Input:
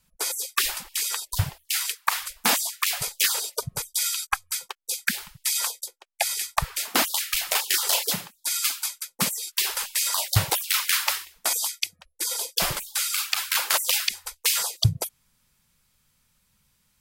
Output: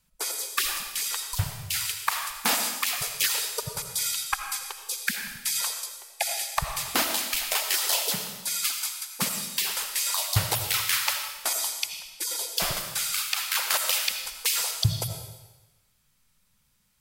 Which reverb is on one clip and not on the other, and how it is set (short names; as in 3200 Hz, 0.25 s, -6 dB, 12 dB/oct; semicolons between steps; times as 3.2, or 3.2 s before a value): digital reverb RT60 1.1 s, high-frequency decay 1×, pre-delay 40 ms, DRR 5 dB; gain -3 dB